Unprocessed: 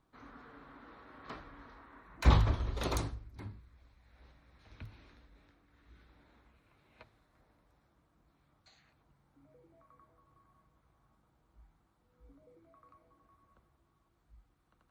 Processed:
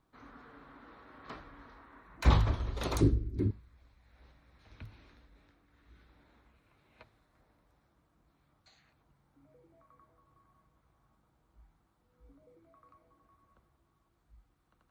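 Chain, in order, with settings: 3.01–3.51 resonant low shelf 540 Hz +13.5 dB, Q 3

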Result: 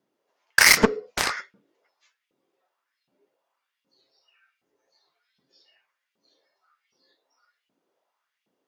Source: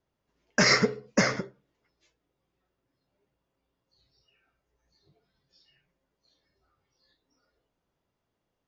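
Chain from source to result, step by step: LFO high-pass saw up 1.3 Hz 200–2700 Hz; added harmonics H 7 -11 dB, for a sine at -6 dBFS; gain +3 dB

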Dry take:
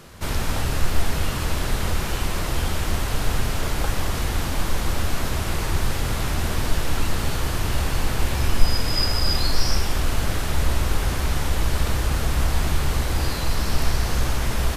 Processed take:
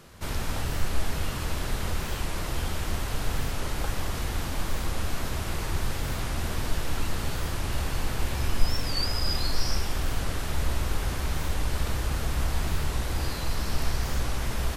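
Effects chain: record warp 45 rpm, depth 160 cents; gain -6 dB

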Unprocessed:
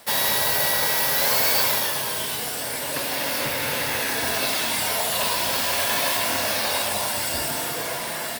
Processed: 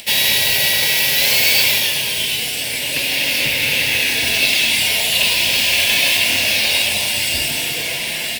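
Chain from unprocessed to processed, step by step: tilt -2 dB/oct; upward compressor, threshold -40 dBFS; resonant high shelf 1800 Hz +12 dB, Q 3; gain -1 dB

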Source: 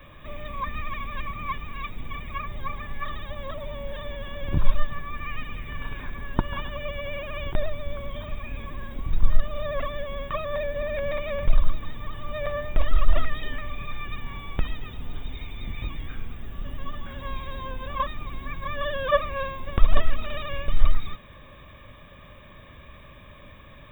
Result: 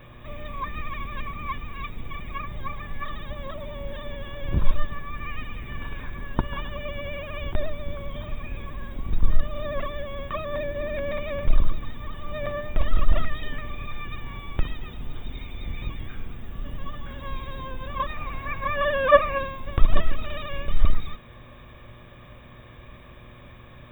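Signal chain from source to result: octaver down 1 oct, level -2 dB; spectral gain 18.09–19.38, 460–2900 Hz +7 dB; buzz 120 Hz, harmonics 21, -51 dBFS -6 dB/oct; gain -1 dB

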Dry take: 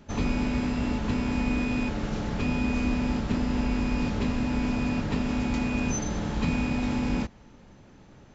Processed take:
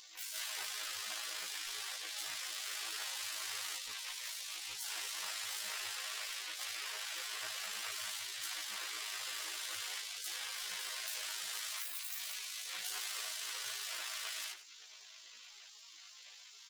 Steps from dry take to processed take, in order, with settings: tracing distortion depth 0.31 ms; spectral gate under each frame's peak -30 dB weak; granular stretch 2×, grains 38 ms; notches 60/120/180 Hz; echo 99 ms -24 dB; fast leveller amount 50%; gain +2 dB

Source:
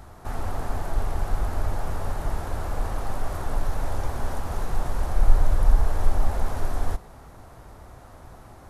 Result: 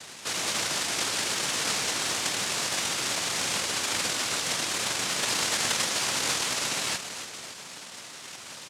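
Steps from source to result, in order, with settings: on a send: feedback echo 0.287 s, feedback 49%, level -9.5 dB; on the sum: noise vocoder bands 1; gain +5 dB

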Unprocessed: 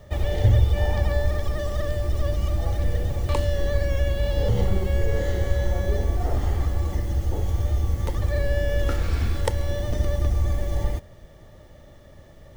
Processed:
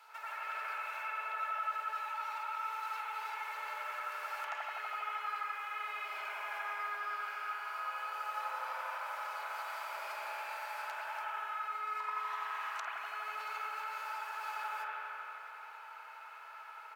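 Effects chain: steep high-pass 1200 Hz 36 dB/oct; high shelf 3700 Hz -11 dB; compressor 12:1, threshold -51 dBFS, peak gain reduction 20.5 dB; doubler 38 ms -14 dB; speakerphone echo 0.19 s, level -8 dB; spring tank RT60 2.4 s, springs 59 ms, chirp 45 ms, DRR -8.5 dB; speed mistake 45 rpm record played at 33 rpm; gain +5 dB

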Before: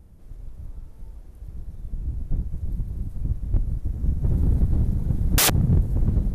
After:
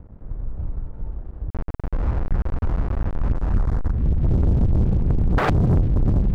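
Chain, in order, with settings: 1.5–3.91 level-crossing sampler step -29.5 dBFS; LPF 1500 Hz 24 dB/oct; sample leveller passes 3; gain -1.5 dB

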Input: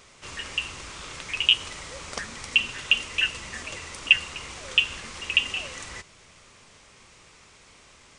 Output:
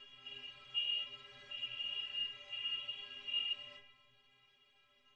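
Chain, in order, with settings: stepped spectrum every 0.4 s; synth low-pass 3000 Hz, resonance Q 4.4; metallic resonator 120 Hz, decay 0.58 s, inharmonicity 0.03; on a send at -5 dB: reverb RT60 1.6 s, pre-delay 5 ms; on the sum: plain phase-vocoder stretch 0.63×; gain -4.5 dB

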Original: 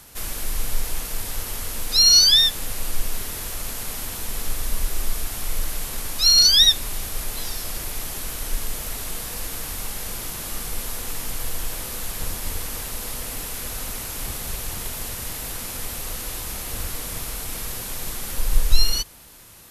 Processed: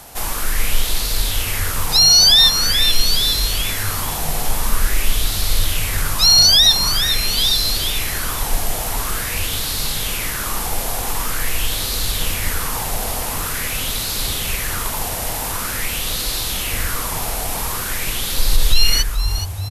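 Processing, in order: limiter -9.5 dBFS, peak gain reduction 7.5 dB; frequency-shifting echo 0.425 s, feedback 46%, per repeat -55 Hz, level -9 dB; LFO bell 0.46 Hz 720–4200 Hz +11 dB; gain +6 dB

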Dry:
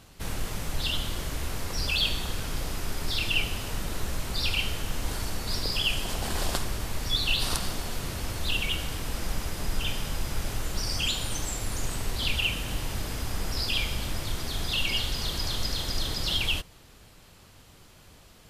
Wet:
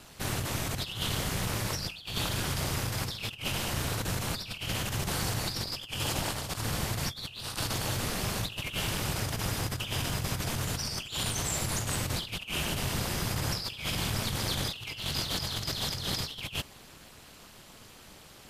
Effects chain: low shelf 210 Hz -7.5 dB; negative-ratio compressor -34 dBFS, ratio -0.5; ring modulator 110 Hz; gain +4.5 dB

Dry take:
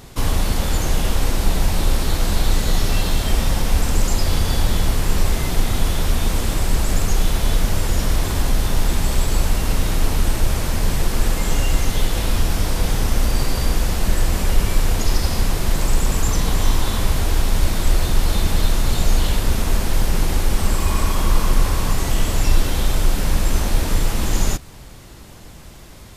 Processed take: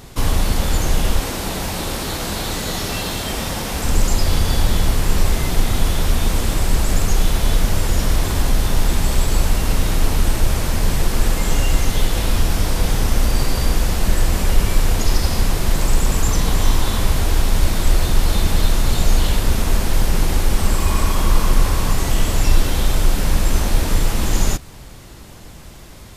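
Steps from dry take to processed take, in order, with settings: 1.2–3.84 HPF 170 Hz 6 dB/oct; gain +1.5 dB

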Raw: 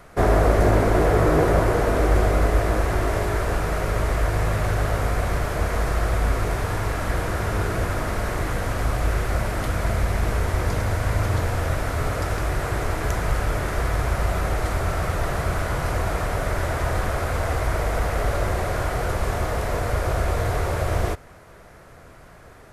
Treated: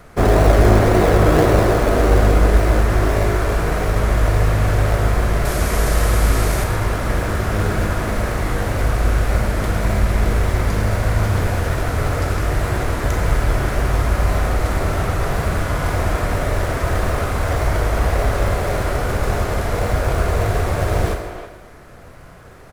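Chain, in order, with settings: 5.45–6.64 high shelf 3600 Hz +11 dB; in parallel at -8 dB: decimation with a swept rate 37×, swing 60% 1.8 Hz; on the sum: speakerphone echo 0.32 s, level -9 dB; Schroeder reverb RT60 1.1 s, combs from 30 ms, DRR 5 dB; gain +1.5 dB

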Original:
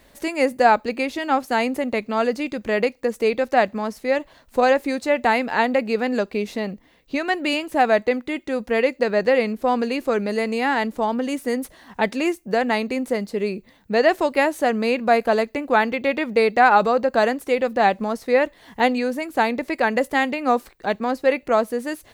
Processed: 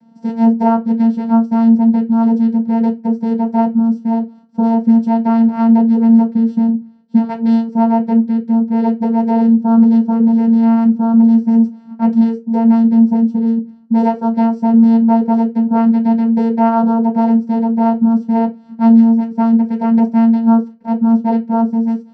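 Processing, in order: 3.74–4.83 dynamic EQ 1200 Hz, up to -8 dB, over -33 dBFS, Q 0.93; vocoder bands 8, saw 228 Hz; reverb RT60 0.20 s, pre-delay 3 ms, DRR -1.5 dB; gain -11.5 dB

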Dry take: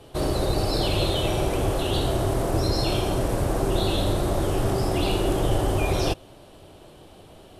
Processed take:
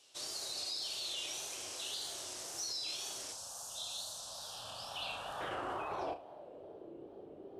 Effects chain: band-pass sweep 6100 Hz -> 390 Hz, 4.16–6.86; wow and flutter 110 cents; 3.32–5.41 fixed phaser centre 870 Hz, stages 4; limiter -33.5 dBFS, peak gain reduction 11.5 dB; on a send: flutter echo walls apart 6.1 m, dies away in 0.23 s; on the sum: gain +2 dB

